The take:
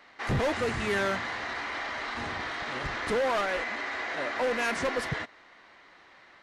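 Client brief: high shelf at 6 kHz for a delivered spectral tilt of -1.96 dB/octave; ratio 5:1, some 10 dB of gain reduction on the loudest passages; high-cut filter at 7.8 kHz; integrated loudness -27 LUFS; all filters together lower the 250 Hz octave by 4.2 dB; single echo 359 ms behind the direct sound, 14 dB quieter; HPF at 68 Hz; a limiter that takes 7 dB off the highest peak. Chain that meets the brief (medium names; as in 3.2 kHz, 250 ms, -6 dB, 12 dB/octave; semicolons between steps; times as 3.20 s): high-pass 68 Hz; low-pass 7.8 kHz; peaking EQ 250 Hz -5.5 dB; treble shelf 6 kHz -7 dB; compression 5:1, threshold -37 dBFS; peak limiter -35 dBFS; delay 359 ms -14 dB; trim +15 dB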